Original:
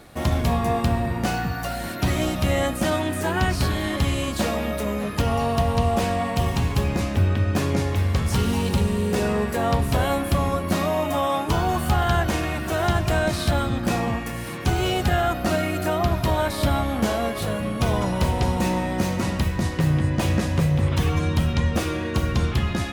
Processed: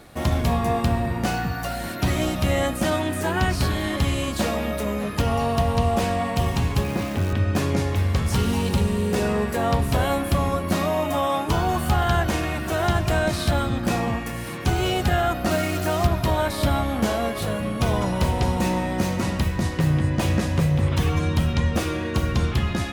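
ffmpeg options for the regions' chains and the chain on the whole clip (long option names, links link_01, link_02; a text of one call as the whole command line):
ffmpeg -i in.wav -filter_complex "[0:a]asettb=1/sr,asplit=3[link_01][link_02][link_03];[link_01]atrim=end=6.834[link_04];[link_02]atrim=start=6.83:end=7.33,asetpts=PTS-STARTPTS,afade=type=in:duration=0.004:curve=qsin,afade=type=out:start_time=0.496:duration=0.004:curve=qsin,highpass=110,lowpass=4000,acrusher=bits=7:dc=4:mix=0:aa=0.000001[link_05];[link_03]atrim=start=7.326[link_06];[link_04][link_05]acrossfade=duration=0.004:curve1=hsin:curve2=qsin[link_07];[link_07][link_06]acrossfade=duration=0.004:curve1=qsin:curve2=hsin,asettb=1/sr,asplit=3[link_08][link_09][link_10];[link_08]atrim=end=15.514[link_11];[link_09]atrim=start=15.51:end=16.07,asetpts=PTS-STARTPTS,afade=type=in:duration=0.004:curve=qsin,afade=type=out:start_time=0.556:duration=0.004:curve=qsin,asubboost=boost=6.5:cutoff=140,acrusher=bits=4:mix=0:aa=0.5[link_12];[link_10]atrim=start=16.066[link_13];[link_11][link_12]acrossfade=duration=0.004:curve1=hsin:curve2=qsin[link_14];[link_14][link_13]acrossfade=duration=0.004:curve1=qsin:curve2=hsin" out.wav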